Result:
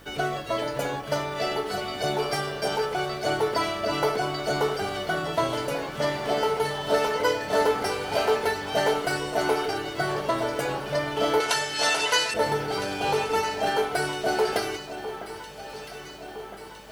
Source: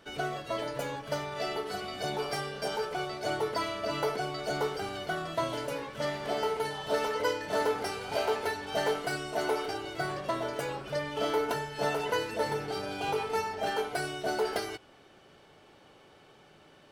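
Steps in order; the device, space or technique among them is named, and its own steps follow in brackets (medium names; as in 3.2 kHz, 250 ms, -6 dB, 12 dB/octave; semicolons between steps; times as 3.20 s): video cassette with head-switching buzz (mains buzz 50 Hz, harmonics 39, -60 dBFS -4 dB/octave; white noise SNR 34 dB); 11.40–12.34 s: frequency weighting ITU-R 468; echo whose repeats swap between lows and highs 655 ms, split 1.7 kHz, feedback 77%, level -11.5 dB; trim +6 dB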